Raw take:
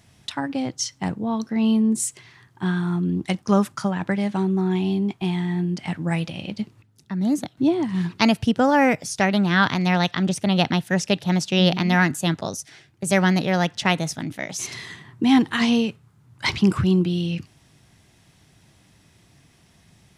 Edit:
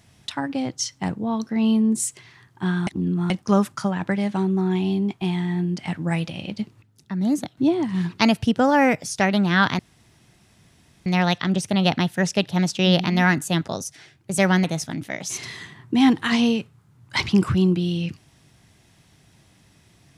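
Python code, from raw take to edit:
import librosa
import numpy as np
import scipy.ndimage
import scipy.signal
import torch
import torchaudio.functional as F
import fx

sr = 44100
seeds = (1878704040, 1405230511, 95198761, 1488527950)

y = fx.edit(x, sr, fx.reverse_span(start_s=2.87, length_s=0.43),
    fx.insert_room_tone(at_s=9.79, length_s=1.27),
    fx.cut(start_s=13.37, length_s=0.56), tone=tone)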